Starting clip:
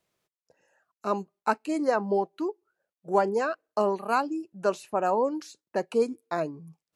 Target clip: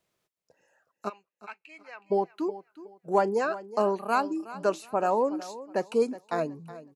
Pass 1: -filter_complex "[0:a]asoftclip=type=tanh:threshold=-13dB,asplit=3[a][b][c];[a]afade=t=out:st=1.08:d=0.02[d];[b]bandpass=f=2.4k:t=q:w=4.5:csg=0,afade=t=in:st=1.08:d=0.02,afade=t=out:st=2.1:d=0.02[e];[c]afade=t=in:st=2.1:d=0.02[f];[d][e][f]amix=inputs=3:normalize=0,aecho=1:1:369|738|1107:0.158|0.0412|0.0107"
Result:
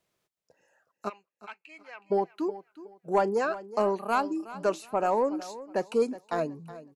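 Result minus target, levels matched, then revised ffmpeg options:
soft clip: distortion +14 dB
-filter_complex "[0:a]asoftclip=type=tanh:threshold=-5dB,asplit=3[a][b][c];[a]afade=t=out:st=1.08:d=0.02[d];[b]bandpass=f=2.4k:t=q:w=4.5:csg=0,afade=t=in:st=1.08:d=0.02,afade=t=out:st=2.1:d=0.02[e];[c]afade=t=in:st=2.1:d=0.02[f];[d][e][f]amix=inputs=3:normalize=0,aecho=1:1:369|738|1107:0.158|0.0412|0.0107"

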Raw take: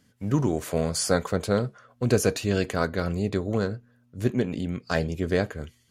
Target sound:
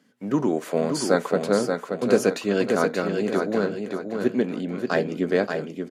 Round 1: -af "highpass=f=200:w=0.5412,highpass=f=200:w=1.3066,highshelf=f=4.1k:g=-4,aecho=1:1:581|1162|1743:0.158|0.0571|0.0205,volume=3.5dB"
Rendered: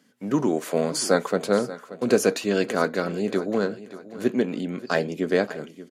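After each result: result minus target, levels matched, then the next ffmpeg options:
echo-to-direct -10.5 dB; 8000 Hz band +4.0 dB
-af "highpass=f=200:w=0.5412,highpass=f=200:w=1.3066,highshelf=f=4.1k:g=-4,aecho=1:1:581|1162|1743|2324:0.531|0.191|0.0688|0.0248,volume=3.5dB"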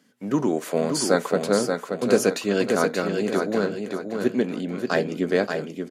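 8000 Hz band +4.5 dB
-af "highpass=f=200:w=0.5412,highpass=f=200:w=1.3066,highshelf=f=4.1k:g=-10,aecho=1:1:581|1162|1743|2324:0.531|0.191|0.0688|0.0248,volume=3.5dB"

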